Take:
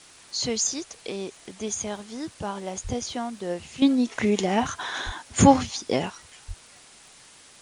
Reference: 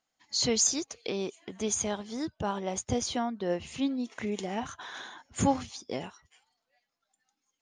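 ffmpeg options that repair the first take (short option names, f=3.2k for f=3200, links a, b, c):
-filter_complex "[0:a]adeclick=t=4,asplit=3[a][b][c];[a]afade=t=out:st=2.83:d=0.02[d];[b]highpass=f=140:w=0.5412,highpass=f=140:w=1.3066,afade=t=in:st=2.83:d=0.02,afade=t=out:st=2.95:d=0.02[e];[c]afade=t=in:st=2.95:d=0.02[f];[d][e][f]amix=inputs=3:normalize=0,asplit=3[g][h][i];[g]afade=t=out:st=5.05:d=0.02[j];[h]highpass=f=140:w=0.5412,highpass=f=140:w=1.3066,afade=t=in:st=5.05:d=0.02,afade=t=out:st=5.17:d=0.02[k];[i]afade=t=in:st=5.17:d=0.02[l];[j][k][l]amix=inputs=3:normalize=0,asplit=3[m][n][o];[m]afade=t=out:st=6.47:d=0.02[p];[n]highpass=f=140:w=0.5412,highpass=f=140:w=1.3066,afade=t=in:st=6.47:d=0.02,afade=t=out:st=6.59:d=0.02[q];[o]afade=t=in:st=6.59:d=0.02[r];[p][q][r]amix=inputs=3:normalize=0,afwtdn=0.004,asetnsamples=n=441:p=0,asendcmd='3.82 volume volume -10.5dB',volume=0dB"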